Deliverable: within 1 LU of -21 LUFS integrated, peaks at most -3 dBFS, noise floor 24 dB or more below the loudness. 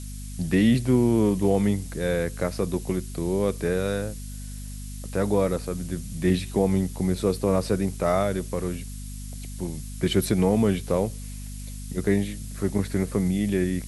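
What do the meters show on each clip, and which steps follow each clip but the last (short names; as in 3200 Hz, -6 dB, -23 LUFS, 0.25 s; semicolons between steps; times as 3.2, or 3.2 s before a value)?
hum 50 Hz; harmonics up to 250 Hz; hum level -34 dBFS; noise floor -36 dBFS; noise floor target -49 dBFS; loudness -25.0 LUFS; peak -9.5 dBFS; loudness target -21.0 LUFS
-> de-hum 50 Hz, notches 5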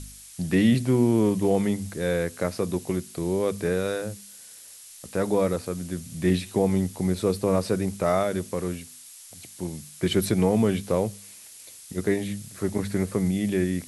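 hum none; noise floor -46 dBFS; noise floor target -50 dBFS
-> denoiser 6 dB, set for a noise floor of -46 dBFS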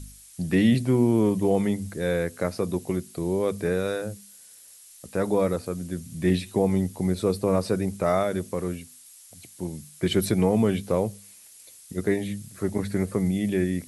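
noise floor -50 dBFS; loudness -25.5 LUFS; peak -9.5 dBFS; loudness target -21.0 LUFS
-> gain +4.5 dB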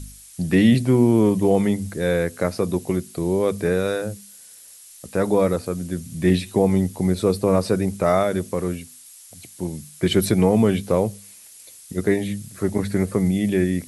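loudness -21.0 LUFS; peak -5.0 dBFS; noise floor -45 dBFS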